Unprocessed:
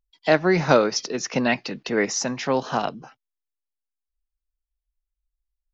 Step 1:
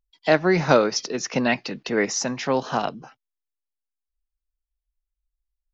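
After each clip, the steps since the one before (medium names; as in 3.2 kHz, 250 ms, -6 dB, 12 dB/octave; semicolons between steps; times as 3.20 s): no audible change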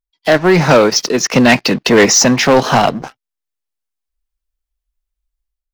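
level rider gain up to 13 dB; waveshaping leveller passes 3; trim -1 dB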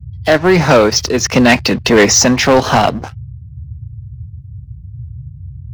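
band noise 60–130 Hz -29 dBFS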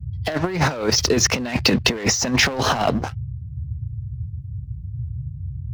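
compressor with a negative ratio -14 dBFS, ratio -0.5; trim -4.5 dB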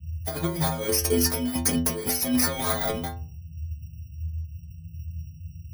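bit-reversed sample order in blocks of 16 samples; inharmonic resonator 80 Hz, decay 0.58 s, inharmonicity 0.008; trim +5.5 dB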